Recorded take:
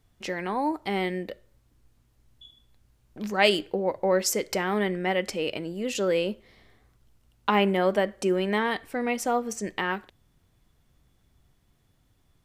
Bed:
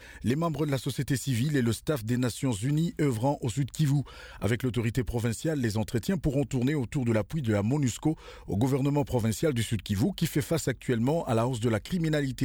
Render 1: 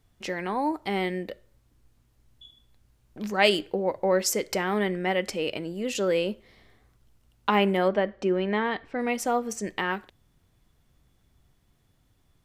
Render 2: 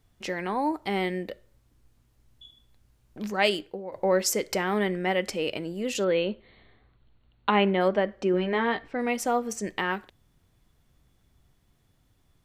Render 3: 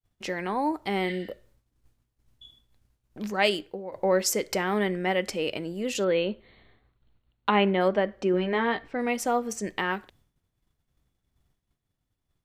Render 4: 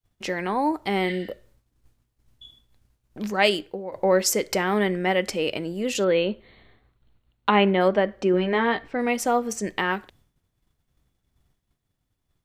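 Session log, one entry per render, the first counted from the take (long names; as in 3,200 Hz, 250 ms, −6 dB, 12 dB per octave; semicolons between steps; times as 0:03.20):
0:07.88–0:08.99: high-frequency loss of the air 180 metres
0:03.20–0:03.92: fade out, to −13.5 dB; 0:06.04–0:07.81: linear-phase brick-wall low-pass 4,500 Hz; 0:08.32–0:08.88: double-tracking delay 17 ms −6.5 dB
downward expander −55 dBFS; 0:01.10–0:01.30: healed spectral selection 1,400–8,200 Hz both
level +3.5 dB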